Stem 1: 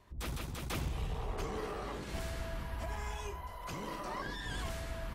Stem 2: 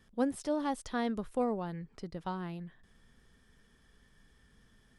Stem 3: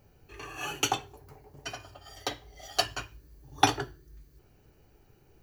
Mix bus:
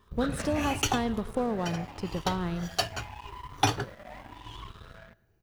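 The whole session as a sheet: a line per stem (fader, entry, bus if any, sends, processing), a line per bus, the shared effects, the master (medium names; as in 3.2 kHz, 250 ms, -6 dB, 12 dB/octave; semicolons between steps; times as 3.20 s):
0.62 s -0.5 dB -> 0.84 s -9.5 dB, 0.00 s, no send, echo send -14 dB, drifting ripple filter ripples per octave 0.63, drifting +0.85 Hz, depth 23 dB; compression, threshold -32 dBFS, peak gain reduction 7 dB; rippled Chebyshev low-pass 4 kHz, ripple 6 dB
0.0 dB, 0.00 s, no send, echo send -17.5 dB, compression, threshold -33 dBFS, peak gain reduction 9 dB
-8.0 dB, 0.00 s, no send, no echo send, none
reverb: none
echo: feedback delay 110 ms, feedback 43%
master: peaking EQ 100 Hz +9 dB 0.6 oct; waveshaping leveller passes 2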